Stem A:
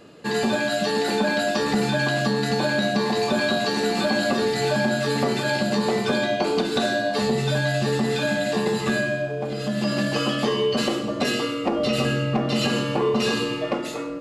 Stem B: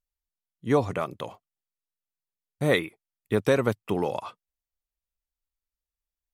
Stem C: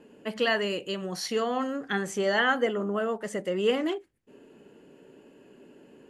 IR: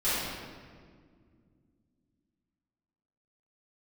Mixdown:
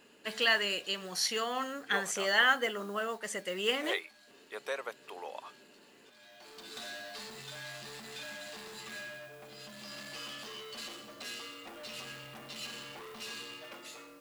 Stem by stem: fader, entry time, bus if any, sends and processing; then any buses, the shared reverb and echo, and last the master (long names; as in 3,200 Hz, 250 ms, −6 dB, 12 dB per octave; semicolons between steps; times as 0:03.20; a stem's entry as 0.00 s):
−17.5 dB, 0.00 s, no send, noise that follows the level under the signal 26 dB; soft clipping −24.5 dBFS, distortion −10 dB; automatic ducking −18 dB, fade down 1.45 s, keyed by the third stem
−11.5 dB, 1.20 s, no send, high-pass filter 490 Hz 24 dB per octave; spectral tilt −2.5 dB per octave
−4.5 dB, 0.00 s, no send, noise that follows the level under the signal 35 dB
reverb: not used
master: tilt shelving filter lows −8.5 dB, about 870 Hz